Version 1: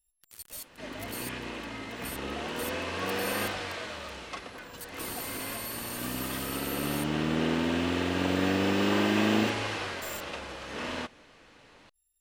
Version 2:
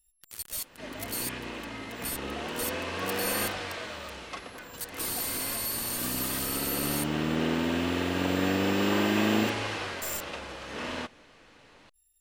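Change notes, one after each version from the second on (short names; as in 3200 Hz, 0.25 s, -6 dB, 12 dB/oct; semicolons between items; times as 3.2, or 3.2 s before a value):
first sound +7.0 dB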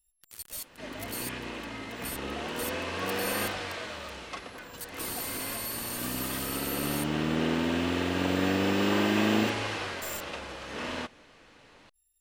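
first sound -4.0 dB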